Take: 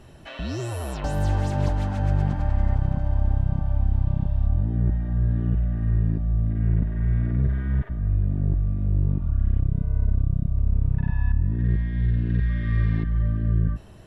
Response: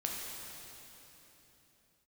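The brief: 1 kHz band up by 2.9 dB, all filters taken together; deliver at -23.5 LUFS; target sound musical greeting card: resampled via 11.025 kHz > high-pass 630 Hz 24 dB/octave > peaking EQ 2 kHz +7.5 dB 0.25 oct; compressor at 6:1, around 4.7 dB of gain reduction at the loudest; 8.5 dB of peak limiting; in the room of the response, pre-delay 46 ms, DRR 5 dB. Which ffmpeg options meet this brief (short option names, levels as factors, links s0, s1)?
-filter_complex "[0:a]equalizer=f=1000:t=o:g=4.5,acompressor=threshold=0.0891:ratio=6,alimiter=limit=0.0668:level=0:latency=1,asplit=2[s0][s1];[1:a]atrim=start_sample=2205,adelay=46[s2];[s1][s2]afir=irnorm=-1:irlink=0,volume=0.398[s3];[s0][s3]amix=inputs=2:normalize=0,aresample=11025,aresample=44100,highpass=f=630:w=0.5412,highpass=f=630:w=1.3066,equalizer=f=2000:t=o:w=0.25:g=7.5,volume=10.6"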